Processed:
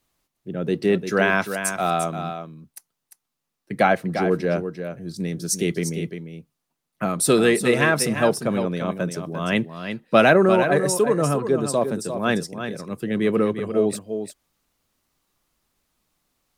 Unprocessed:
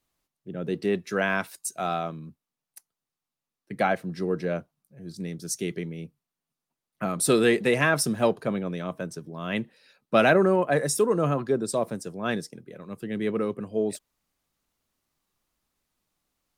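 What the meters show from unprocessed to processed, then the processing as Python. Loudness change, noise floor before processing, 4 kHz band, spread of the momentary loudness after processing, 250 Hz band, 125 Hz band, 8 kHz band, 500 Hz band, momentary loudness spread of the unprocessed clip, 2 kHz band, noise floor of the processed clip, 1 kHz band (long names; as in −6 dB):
+4.5 dB, below −85 dBFS, +5.0 dB, 14 LU, +5.5 dB, +5.0 dB, +5.0 dB, +5.0 dB, 18 LU, +5.0 dB, −80 dBFS, +5.5 dB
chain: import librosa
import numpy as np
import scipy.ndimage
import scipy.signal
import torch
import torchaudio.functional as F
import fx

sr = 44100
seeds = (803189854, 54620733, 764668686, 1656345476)

y = fx.rider(x, sr, range_db=5, speed_s=2.0)
y = y + 10.0 ** (-8.5 / 20.0) * np.pad(y, (int(348 * sr / 1000.0), 0))[:len(y)]
y = y * librosa.db_to_amplitude(3.5)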